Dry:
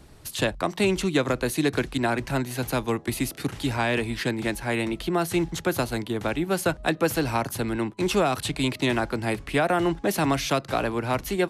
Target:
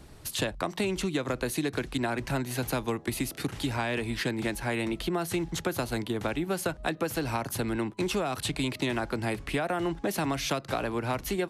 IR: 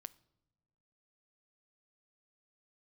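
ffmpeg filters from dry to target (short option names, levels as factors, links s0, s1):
-af "acompressor=threshold=0.0501:ratio=6"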